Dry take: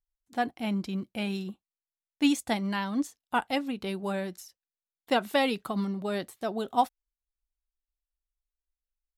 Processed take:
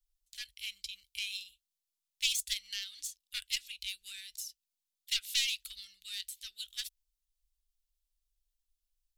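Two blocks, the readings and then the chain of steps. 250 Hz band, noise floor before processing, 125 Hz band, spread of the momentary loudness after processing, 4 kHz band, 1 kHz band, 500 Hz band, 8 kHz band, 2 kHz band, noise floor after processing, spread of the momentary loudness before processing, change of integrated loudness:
below −40 dB, below −85 dBFS, below −30 dB, 14 LU, +4.0 dB, below −40 dB, below −40 dB, +7.0 dB, −6.5 dB, below −85 dBFS, 8 LU, −6.0 dB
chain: phase distortion by the signal itself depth 0.11 ms
inverse Chebyshev band-stop filter 140–1,000 Hz, stop band 60 dB
level +6.5 dB

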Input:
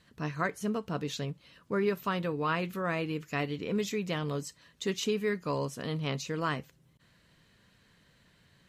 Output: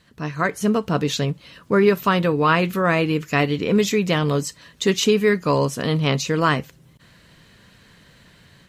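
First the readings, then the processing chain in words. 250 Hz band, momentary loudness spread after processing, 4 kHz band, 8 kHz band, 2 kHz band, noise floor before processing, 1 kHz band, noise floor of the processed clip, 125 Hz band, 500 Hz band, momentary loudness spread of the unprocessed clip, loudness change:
+13.0 dB, 7 LU, +13.0 dB, +13.0 dB, +12.5 dB, −65 dBFS, +12.5 dB, −53 dBFS, +13.0 dB, +13.0 dB, 7 LU, +13.0 dB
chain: automatic gain control gain up to 7 dB
level +6 dB

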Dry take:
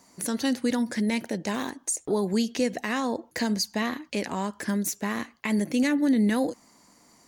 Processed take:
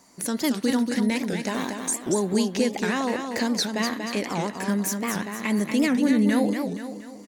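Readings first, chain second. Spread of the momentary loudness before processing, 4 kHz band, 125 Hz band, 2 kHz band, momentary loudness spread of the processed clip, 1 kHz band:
8 LU, +3.0 dB, +3.0 dB, +2.5 dB, 8 LU, +2.5 dB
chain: parametric band 85 Hz −8 dB 0.35 octaves
repeating echo 237 ms, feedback 46%, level −6 dB
wow of a warped record 78 rpm, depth 250 cents
level +1.5 dB

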